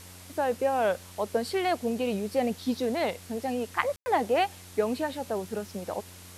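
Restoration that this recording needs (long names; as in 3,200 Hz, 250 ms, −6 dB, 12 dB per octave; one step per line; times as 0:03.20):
hum removal 90.4 Hz, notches 11
ambience match 0:03.96–0:04.06
broadband denoise 26 dB, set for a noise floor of −48 dBFS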